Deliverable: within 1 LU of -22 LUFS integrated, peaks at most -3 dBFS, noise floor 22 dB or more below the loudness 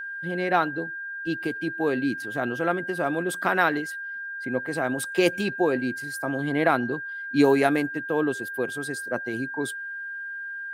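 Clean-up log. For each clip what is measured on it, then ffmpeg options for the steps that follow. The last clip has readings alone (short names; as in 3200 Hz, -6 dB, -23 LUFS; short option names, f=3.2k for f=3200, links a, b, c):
steady tone 1600 Hz; tone level -32 dBFS; loudness -26.5 LUFS; peak -7.0 dBFS; loudness target -22.0 LUFS
-> -af "bandreject=f=1.6k:w=30"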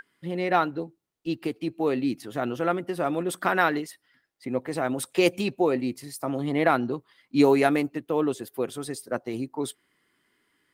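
steady tone none; loudness -27.0 LUFS; peak -7.0 dBFS; loudness target -22.0 LUFS
-> -af "volume=5dB,alimiter=limit=-3dB:level=0:latency=1"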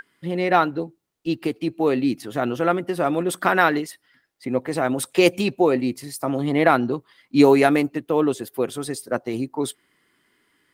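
loudness -22.0 LUFS; peak -3.0 dBFS; noise floor -67 dBFS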